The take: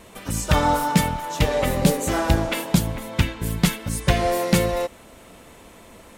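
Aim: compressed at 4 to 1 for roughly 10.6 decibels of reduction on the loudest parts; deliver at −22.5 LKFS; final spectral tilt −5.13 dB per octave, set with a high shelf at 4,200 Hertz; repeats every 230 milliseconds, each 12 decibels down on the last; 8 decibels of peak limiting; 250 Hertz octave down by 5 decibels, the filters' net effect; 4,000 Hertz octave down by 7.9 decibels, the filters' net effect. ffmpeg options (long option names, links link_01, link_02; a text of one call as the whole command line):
ffmpeg -i in.wav -af "equalizer=frequency=250:width_type=o:gain=-8,equalizer=frequency=4000:width_type=o:gain=-7.5,highshelf=frequency=4200:gain=-5.5,acompressor=threshold=-28dB:ratio=4,alimiter=limit=-23dB:level=0:latency=1,aecho=1:1:230|460|690:0.251|0.0628|0.0157,volume=11dB" out.wav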